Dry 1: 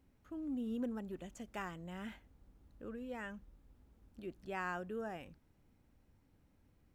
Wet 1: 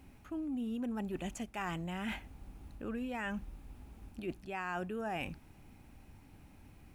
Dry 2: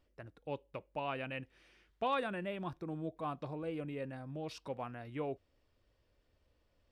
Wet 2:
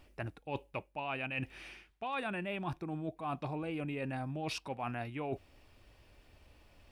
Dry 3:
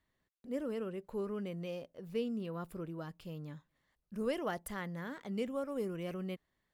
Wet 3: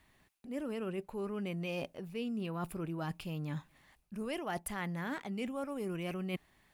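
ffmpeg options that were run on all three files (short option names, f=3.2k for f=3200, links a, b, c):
-af "equalizer=f=500:t=o:w=0.33:g=-6,equalizer=f=800:t=o:w=0.33:g=5,equalizer=f=2.5k:t=o:w=0.33:g=7,equalizer=f=10k:t=o:w=0.33:g=5,areverse,acompressor=threshold=-48dB:ratio=10,areverse,volume=13dB"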